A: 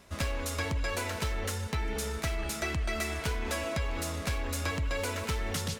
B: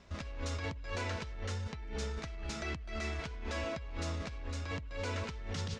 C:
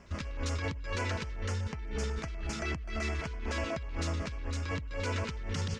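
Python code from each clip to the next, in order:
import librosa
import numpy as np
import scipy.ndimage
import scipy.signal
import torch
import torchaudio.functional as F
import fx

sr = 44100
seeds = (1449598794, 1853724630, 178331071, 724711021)

y1 = scipy.signal.sosfilt(scipy.signal.butter(4, 6300.0, 'lowpass', fs=sr, output='sos'), x)
y1 = fx.low_shelf(y1, sr, hz=140.0, db=6.5)
y1 = fx.over_compress(y1, sr, threshold_db=-32.0, ratio=-1.0)
y1 = y1 * 10.0 ** (-7.0 / 20.0)
y2 = fx.filter_lfo_notch(y1, sr, shape='square', hz=8.1, low_hz=710.0, high_hz=3800.0, q=1.4)
y2 = y2 * 10.0 ** (4.5 / 20.0)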